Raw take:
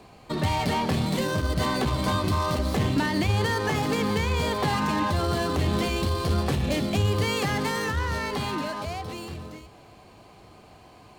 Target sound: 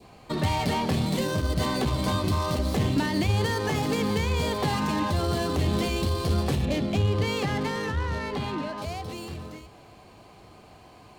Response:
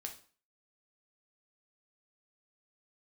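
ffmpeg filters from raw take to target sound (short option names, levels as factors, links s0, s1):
-filter_complex "[0:a]adynamicequalizer=threshold=0.00708:dfrequency=1400:dqfactor=0.91:tfrequency=1400:tqfactor=0.91:attack=5:release=100:ratio=0.375:range=2:mode=cutabove:tftype=bell,asettb=1/sr,asplit=3[s0][s1][s2];[s0]atrim=end=6.654[s3];[s1]atrim=start=6.65:end=8.78,asetpts=PTS-STARTPTS,afade=t=in:d=0.004:c=qsin,afade=t=out:st=2.126:d=0.004:c=qsin,adynamicsmooth=sensitivity=6:basefreq=2200[s4];[s2]atrim=start=8.776[s5];[s3][s4]acrossfade=d=0.004:c1=hsin:c2=qsin[s6];[s6][s5]acrossfade=d=0.004:c1=qsin:c2=hsin"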